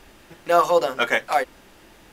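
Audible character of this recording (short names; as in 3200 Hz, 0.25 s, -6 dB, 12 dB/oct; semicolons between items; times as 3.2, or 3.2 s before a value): noise floor -51 dBFS; spectral tilt -1.0 dB/oct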